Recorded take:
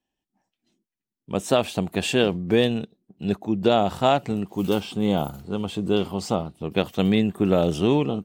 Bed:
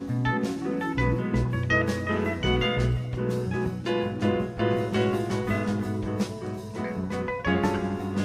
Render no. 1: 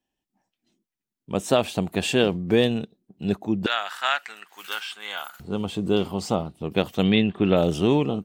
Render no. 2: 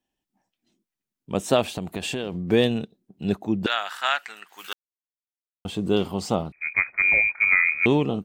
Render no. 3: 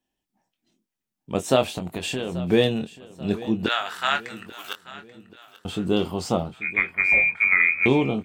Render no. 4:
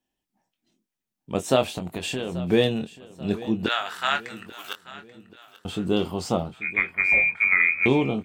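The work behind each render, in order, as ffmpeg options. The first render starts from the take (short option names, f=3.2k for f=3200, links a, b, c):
-filter_complex "[0:a]asettb=1/sr,asplit=3[a][b][c];[a]atrim=end=3.664[d];[b]atrim=start=3.66:end=5.4,asetpts=PTS-STARTPTS,afade=t=in:d=0.004:c=qsin,afade=t=out:st=1.736:d=0.004:c=qsin,highpass=f=1.6k:t=q:w=3.9[e];[c]atrim=start=5.396[f];[d][e]acrossfade=d=0.004:c1=hsin:c2=qsin[g];[g][f]acrossfade=d=0.004:c1=qsin:c2=hsin,asettb=1/sr,asplit=3[h][i][j];[h]atrim=end=7.034[k];[i]atrim=start=7.03:end=7.57,asetpts=PTS-STARTPTS,afade=t=in:d=0.004:c=qsin,afade=t=out:st=0.536:d=0.004:c=qsin,lowpass=f=3.2k:t=q:w=2.3[l];[j]atrim=start=7.566[m];[k][l]acrossfade=d=0.004:c1=hsin:c2=qsin[n];[n][m]acrossfade=d=0.004:c1=qsin:c2=hsin"
-filter_complex "[0:a]asettb=1/sr,asplit=3[a][b][c];[a]atrim=end=1.744[d];[b]atrim=start=1.74:end=2.37,asetpts=PTS-STARTPTS,afade=t=in:d=0.004:c=qsin,afade=t=out:st=0.626:d=0.004:c=qsin,acompressor=threshold=-25dB:ratio=6:attack=3.2:release=140:knee=1:detection=peak[e];[c]atrim=start=2.366[f];[d][e]acrossfade=d=0.004:c1=hsin:c2=qsin[g];[g][f]acrossfade=d=0.004:c1=qsin:c2=hsin,asettb=1/sr,asplit=3[h][i][j];[h]atrim=end=6.524[k];[i]atrim=start=6.52:end=7.86,asetpts=PTS-STARTPTS,afade=t=in:d=0.004:c=qsin,afade=t=out:st=1.336:d=0.004:c=qsin,lowpass=f=2.2k:t=q:w=0.5098,lowpass=f=2.2k:t=q:w=0.6013,lowpass=f=2.2k:t=q:w=0.9,lowpass=f=2.2k:t=q:w=2.563,afreqshift=-2600[l];[j]atrim=start=7.856[m];[k][l]acrossfade=d=0.004:c1=hsin:c2=qsin[n];[n][m]acrossfade=d=0.004:c1=qsin:c2=hsin,asplit=3[o][p][q];[o]atrim=end=4.73,asetpts=PTS-STARTPTS,afade=t=out:st=4.726:d=0.004:c=hsin[r];[p]atrim=start=4.73:end=5.65,asetpts=PTS-STARTPTS,volume=0[s];[q]atrim=start=5.65,asetpts=PTS-STARTPTS,afade=t=in:d=0.004:c=hsin[t];[r][s][t]concat=n=3:v=0:a=1"
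-filter_complex "[0:a]asplit=2[a][b];[b]adelay=23,volume=-8dB[c];[a][c]amix=inputs=2:normalize=0,aecho=1:1:835|1670|2505|3340:0.126|0.0567|0.0255|0.0115"
-af "volume=-1dB"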